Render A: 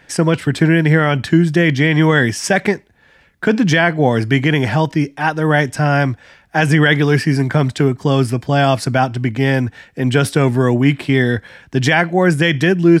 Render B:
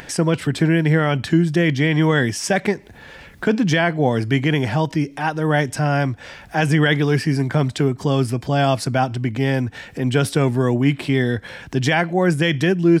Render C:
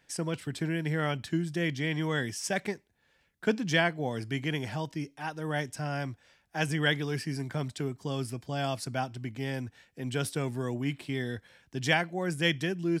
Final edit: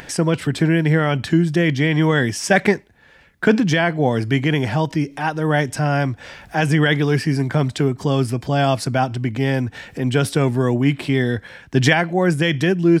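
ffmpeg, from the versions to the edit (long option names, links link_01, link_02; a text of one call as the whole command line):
ffmpeg -i take0.wav -i take1.wav -filter_complex "[0:a]asplit=2[link_01][link_02];[1:a]asplit=3[link_03][link_04][link_05];[link_03]atrim=end=2.512[link_06];[link_01]atrim=start=2.508:end=3.602[link_07];[link_04]atrim=start=3.598:end=11.412[link_08];[link_02]atrim=start=11.408:end=11.932[link_09];[link_05]atrim=start=11.928[link_10];[link_06][link_07]acrossfade=duration=0.004:curve1=hsin:curve2=hsin[link_11];[link_11][link_08]acrossfade=duration=0.004:curve1=hsin:curve2=hsin[link_12];[link_12][link_09]acrossfade=duration=0.004:curve1=hsin:curve2=hsin[link_13];[link_13][link_10]acrossfade=duration=0.004:curve1=hsin:curve2=hsin" out.wav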